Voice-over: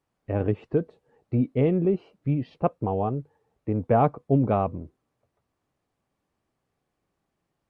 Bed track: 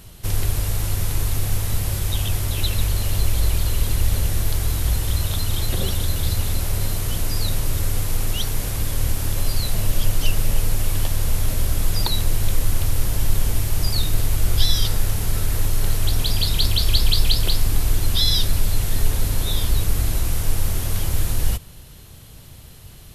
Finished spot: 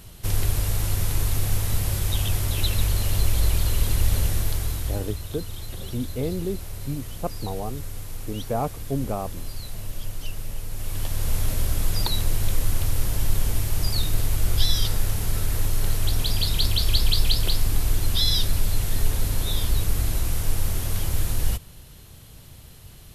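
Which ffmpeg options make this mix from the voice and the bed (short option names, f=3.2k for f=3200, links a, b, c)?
-filter_complex "[0:a]adelay=4600,volume=-6dB[a];[1:a]volume=8dB,afade=t=out:st=4.23:d=0.95:silence=0.281838,afade=t=in:st=10.69:d=0.66:silence=0.334965[b];[a][b]amix=inputs=2:normalize=0"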